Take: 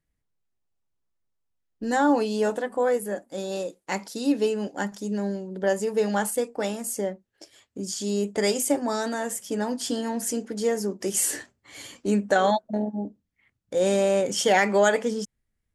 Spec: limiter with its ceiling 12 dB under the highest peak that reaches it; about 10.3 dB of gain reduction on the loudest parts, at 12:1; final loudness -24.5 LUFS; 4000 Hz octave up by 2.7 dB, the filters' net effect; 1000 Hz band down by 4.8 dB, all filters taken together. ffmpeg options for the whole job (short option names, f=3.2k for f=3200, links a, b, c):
-af "equalizer=f=1k:t=o:g=-7,equalizer=f=4k:t=o:g=4,acompressor=threshold=-28dB:ratio=12,volume=12.5dB,alimiter=limit=-15.5dB:level=0:latency=1"